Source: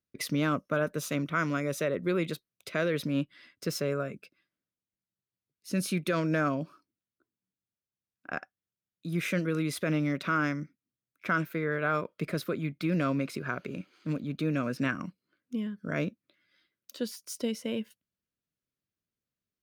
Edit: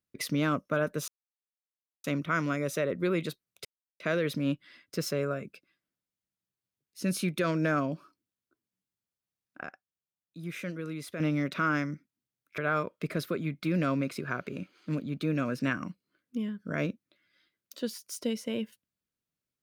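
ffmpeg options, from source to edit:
-filter_complex "[0:a]asplit=6[a][b][c][d][e][f];[a]atrim=end=1.08,asetpts=PTS-STARTPTS,afade=t=out:st=1.076:d=0.004:c=hsin,apad=pad_dur=0.96[g];[b]atrim=start=1.08:end=2.69,asetpts=PTS-STARTPTS,afade=t=in:d=0.004:c=hsin,afade=t=out:st=1.606:d=0.004:c=hsin,apad=pad_dur=0.35[h];[c]atrim=start=2.69:end=8.322,asetpts=PTS-STARTPTS,afade=t=in:d=0.004:c=hsin[i];[d]atrim=start=8.318:end=9.892,asetpts=PTS-STARTPTS,volume=-7.5dB[j];[e]atrim=start=9.888:end=11.272[k];[f]atrim=start=11.758[l];[g][h][i]concat=n=3:v=0:a=1[m];[m][j]acrossfade=d=0.004:c1=hsin:c2=hsin[n];[n][k]acrossfade=d=0.004:c1=hsin:c2=hsin[o];[o][l]acrossfade=d=0.004:c1=hsin:c2=hsin"

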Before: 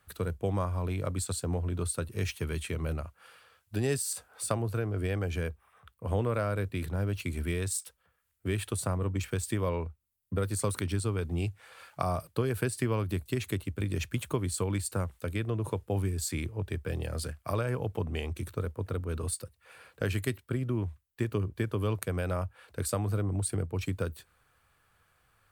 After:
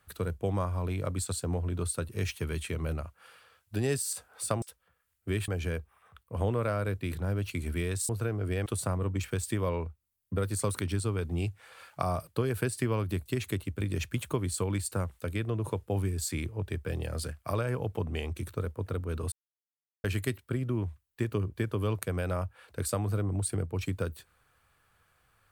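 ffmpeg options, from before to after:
-filter_complex "[0:a]asplit=7[a][b][c][d][e][f][g];[a]atrim=end=4.622[h];[b]atrim=start=7.798:end=8.662[i];[c]atrim=start=5.188:end=7.802[j];[d]atrim=start=4.618:end=5.192[k];[e]atrim=start=8.658:end=19.32,asetpts=PTS-STARTPTS,afade=t=out:st=10.658:d=0.004:c=hsin[l];[f]atrim=start=19.32:end=20.04,asetpts=PTS-STARTPTS,volume=0[m];[g]atrim=start=20.04,asetpts=PTS-STARTPTS,afade=t=in:d=0.004:c=hsin[n];[h][i]acrossfade=d=0.004:c1=hsin:c2=hsin[o];[o][j]acrossfade=d=0.004:c1=hsin:c2=hsin[p];[p][k]acrossfade=d=0.004:c1=hsin:c2=hsin[q];[l][m][n]concat=n=3:v=0:a=1[r];[q][r]acrossfade=d=0.004:c1=hsin:c2=hsin"

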